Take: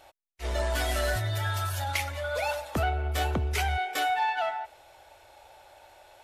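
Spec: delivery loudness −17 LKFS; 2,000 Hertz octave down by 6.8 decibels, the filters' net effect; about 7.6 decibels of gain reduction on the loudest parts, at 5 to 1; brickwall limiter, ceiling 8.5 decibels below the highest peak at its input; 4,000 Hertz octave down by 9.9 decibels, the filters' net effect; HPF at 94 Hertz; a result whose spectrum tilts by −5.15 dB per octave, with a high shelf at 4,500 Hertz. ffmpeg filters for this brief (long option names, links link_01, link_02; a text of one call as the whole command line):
ffmpeg -i in.wav -af "highpass=94,equalizer=frequency=2000:width_type=o:gain=-7,equalizer=frequency=4000:width_type=o:gain=-8,highshelf=frequency=4500:gain=-5,acompressor=threshold=-34dB:ratio=5,volume=23.5dB,alimiter=limit=-8.5dB:level=0:latency=1" out.wav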